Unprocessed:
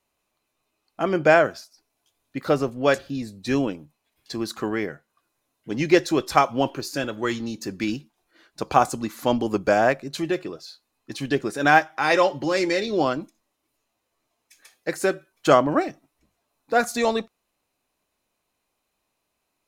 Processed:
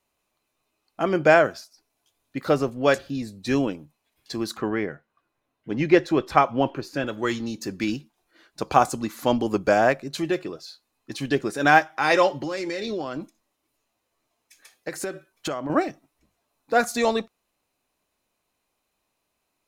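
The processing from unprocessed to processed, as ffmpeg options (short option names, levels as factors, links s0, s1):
-filter_complex "[0:a]asettb=1/sr,asplit=3[s0][s1][s2];[s0]atrim=end=4.574[s3];[s1]atrim=start=4.57:end=7.07,asetpts=PTS-STARTPTS,afade=t=in:d=0.004:c=qsin,afade=t=out:st=2.496:d=0.004:c=qsin,bass=f=250:g=1,treble=f=4000:g=-13[s4];[s2]atrim=start=7.066[s5];[s3][s4]acrossfade=d=0.004:c1=hsin:c2=qsin[s6];[s6][s5]acrossfade=d=0.004:c1=qsin:c2=hsin,asettb=1/sr,asplit=3[s7][s8][s9];[s7]atrim=end=12.414[s10];[s8]atrim=start=12.41:end=15.7,asetpts=PTS-STARTPTS,afade=t=in:d=0.004:c=qsin,afade=t=out:st=3.286:d=0.004:c=qsin,acompressor=threshold=0.0562:ratio=10:attack=3.2:release=140:knee=1:detection=peak[s11];[s9]atrim=start=15.696[s12];[s10][s11]acrossfade=d=0.004:c1=hsin:c2=qsin[s13];[s13][s12]acrossfade=d=0.004:c1=qsin:c2=hsin"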